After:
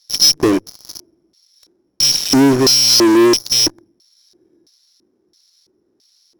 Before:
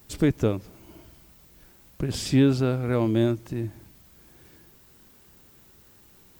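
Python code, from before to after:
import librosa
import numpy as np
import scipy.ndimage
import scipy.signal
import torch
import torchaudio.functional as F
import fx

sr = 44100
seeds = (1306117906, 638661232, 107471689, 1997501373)

p1 = fx.rattle_buzz(x, sr, strikes_db=-33.0, level_db=-27.0)
p2 = (np.kron(scipy.signal.resample_poly(p1, 1, 8), np.eye(8)[0]) * 8)[:len(p1)]
p3 = fx.hum_notches(p2, sr, base_hz=50, count=3)
p4 = fx.filter_lfo_bandpass(p3, sr, shape='square', hz=1.5, low_hz=340.0, high_hz=4300.0, q=4.2)
p5 = fx.fuzz(p4, sr, gain_db=41.0, gate_db=-47.0)
p6 = p4 + F.gain(torch.from_numpy(p5), -5.5).numpy()
y = F.gain(torch.from_numpy(p6), 6.5).numpy()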